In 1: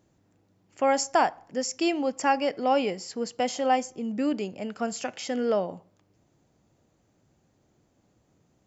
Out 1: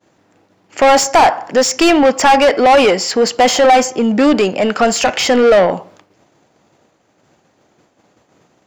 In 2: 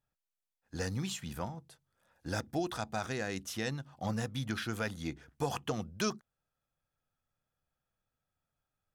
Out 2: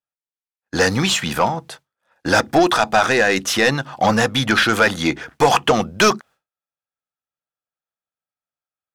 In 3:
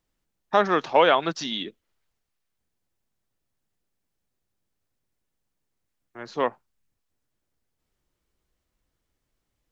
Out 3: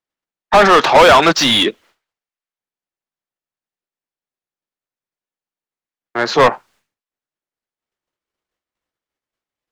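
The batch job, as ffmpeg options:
ffmpeg -i in.wav -filter_complex "[0:a]acontrast=46,agate=range=-33dB:threshold=-53dB:ratio=3:detection=peak,asplit=2[link_01][link_02];[link_02]highpass=frequency=720:poles=1,volume=27dB,asoftclip=type=tanh:threshold=-2.5dB[link_03];[link_01][link_03]amix=inputs=2:normalize=0,lowpass=frequency=3000:poles=1,volume=-6dB,volume=1.5dB" out.wav

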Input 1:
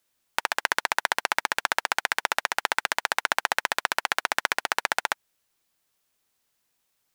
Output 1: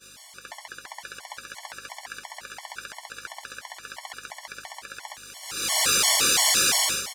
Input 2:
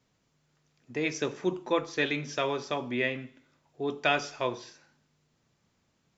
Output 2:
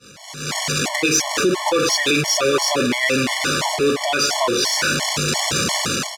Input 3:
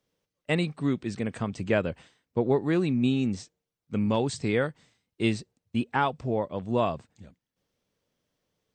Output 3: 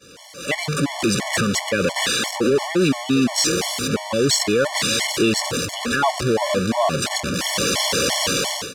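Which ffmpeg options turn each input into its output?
ffmpeg -i in.wav -af "aeval=exprs='val(0)+0.5*0.0596*sgn(val(0))':channel_layout=same,dynaudnorm=framelen=180:gausssize=5:maxgain=12dB,lowpass=7200,aeval=exprs='val(0)+0.0126*(sin(2*PI*50*n/s)+sin(2*PI*2*50*n/s)/2+sin(2*PI*3*50*n/s)/3+sin(2*PI*4*50*n/s)/4+sin(2*PI*5*50*n/s)/5)':channel_layout=same,aecho=1:1:783:0.168,alimiter=limit=-9.5dB:level=0:latency=1:release=56,highpass=frequency=270:poles=1,highshelf=frequency=4600:gain=7.5,agate=range=-33dB:threshold=-21dB:ratio=3:detection=peak,acontrast=42,afftfilt=real='re*gt(sin(2*PI*2.9*pts/sr)*(1-2*mod(floor(b*sr/1024/580),2)),0)':imag='im*gt(sin(2*PI*2.9*pts/sr)*(1-2*mod(floor(b*sr/1024/580),2)),0)':win_size=1024:overlap=0.75,volume=-3dB" out.wav

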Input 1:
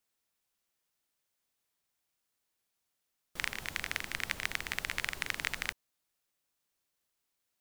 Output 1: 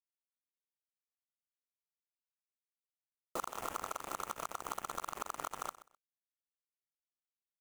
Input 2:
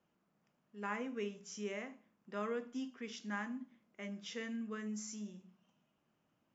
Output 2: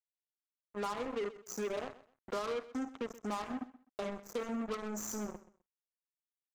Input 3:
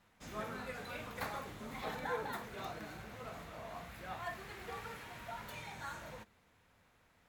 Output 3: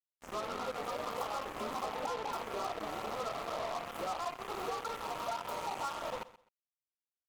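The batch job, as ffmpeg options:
ffmpeg -i in.wav -filter_complex "[0:a]afftfilt=real='re*(1-between(b*sr/4096,1400,5800))':imag='im*(1-between(b*sr/4096,1400,5800))':win_size=4096:overlap=0.75,bass=frequency=250:gain=-14,treble=frequency=4000:gain=-12,acrossover=split=190[link_01][link_02];[link_02]dynaudnorm=framelen=210:gausssize=7:maxgain=9.5dB[link_03];[link_01][link_03]amix=inputs=2:normalize=0,alimiter=limit=-23.5dB:level=0:latency=1:release=379,acompressor=threshold=-46dB:ratio=6,acrusher=bits=7:mix=0:aa=0.5,aecho=1:1:128|256:0.141|0.0311,volume=10dB" out.wav

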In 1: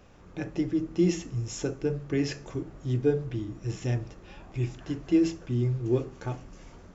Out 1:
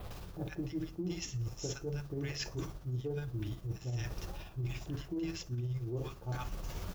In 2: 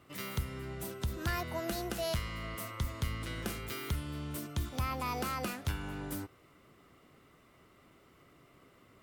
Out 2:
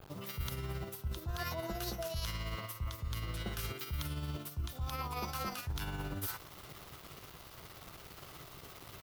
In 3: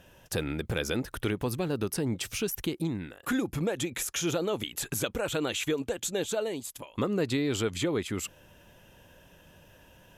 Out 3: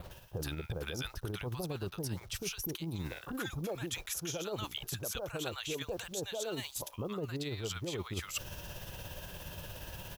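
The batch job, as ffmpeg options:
ffmpeg -i in.wav -filter_complex "[0:a]acrossover=split=980[link_01][link_02];[link_02]adelay=110[link_03];[link_01][link_03]amix=inputs=2:normalize=0,acrusher=bits=9:mix=0:aa=0.000001,adynamicequalizer=threshold=0.00224:dfrequency=5800:dqfactor=3.8:tfrequency=5800:tqfactor=3.8:attack=5:release=100:ratio=0.375:range=2.5:mode=boostabove:tftype=bell,acontrast=35,equalizer=frequency=250:width_type=o:width=1:gain=-11,equalizer=frequency=500:width_type=o:width=1:gain=-4,equalizer=frequency=2000:width_type=o:width=1:gain=-7,equalizer=frequency=8000:width_type=o:width=1:gain=-7,alimiter=limit=-21dB:level=0:latency=1:release=335,tremolo=f=17:d=0.39,areverse,acompressor=threshold=-47dB:ratio=6,areverse,volume=10.5dB" out.wav

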